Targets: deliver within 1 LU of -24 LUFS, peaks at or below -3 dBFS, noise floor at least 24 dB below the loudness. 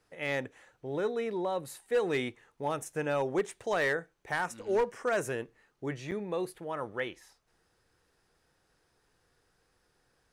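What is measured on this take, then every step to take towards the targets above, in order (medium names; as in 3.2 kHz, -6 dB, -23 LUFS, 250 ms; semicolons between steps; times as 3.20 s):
clipped samples 0.4%; clipping level -22.0 dBFS; dropouts 1; longest dropout 8.2 ms; loudness -33.5 LUFS; peak level -22.0 dBFS; loudness target -24.0 LUFS
-> clip repair -22 dBFS; interpolate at 6.11 s, 8.2 ms; trim +9.5 dB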